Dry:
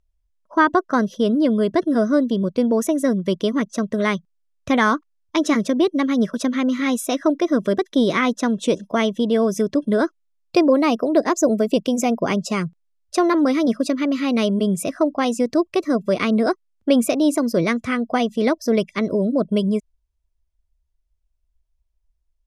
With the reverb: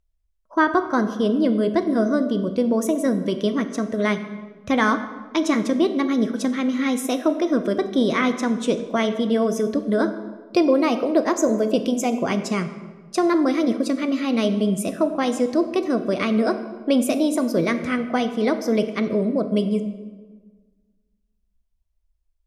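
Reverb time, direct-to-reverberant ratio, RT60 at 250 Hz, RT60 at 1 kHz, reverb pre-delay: 1.4 s, 8.0 dB, 1.7 s, 1.3 s, 3 ms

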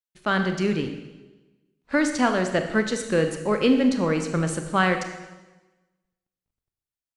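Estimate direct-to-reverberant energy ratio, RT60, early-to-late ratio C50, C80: 6.0 dB, 1.2 s, 7.5 dB, 9.5 dB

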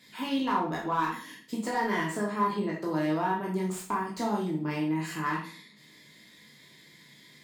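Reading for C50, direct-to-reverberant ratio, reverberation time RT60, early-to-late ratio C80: 5.5 dB, -3.5 dB, 0.45 s, 10.5 dB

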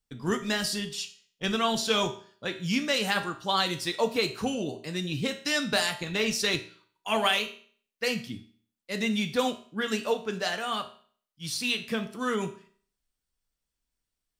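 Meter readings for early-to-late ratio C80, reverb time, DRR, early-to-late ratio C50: 16.0 dB, 0.50 s, 6.0 dB, 12.5 dB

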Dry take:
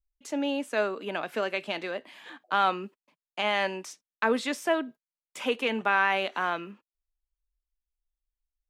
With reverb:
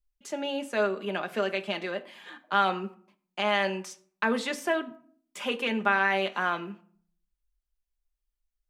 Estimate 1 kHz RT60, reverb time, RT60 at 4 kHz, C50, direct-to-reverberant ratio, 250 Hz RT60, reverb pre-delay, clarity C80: 0.50 s, 0.55 s, 0.30 s, 18.0 dB, 5.5 dB, 0.70 s, 5 ms, 21.0 dB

